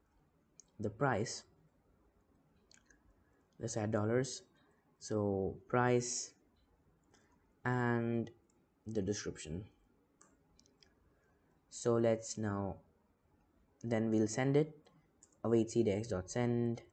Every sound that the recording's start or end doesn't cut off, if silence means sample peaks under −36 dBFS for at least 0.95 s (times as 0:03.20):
0:03.63–0:06.24
0:07.66–0:09.59
0:11.82–0:12.72